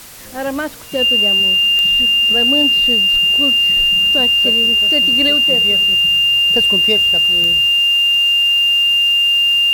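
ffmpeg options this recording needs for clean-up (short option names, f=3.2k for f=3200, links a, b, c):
-af "adeclick=t=4,bandreject=f=2.8k:w=30,afwtdn=0.016"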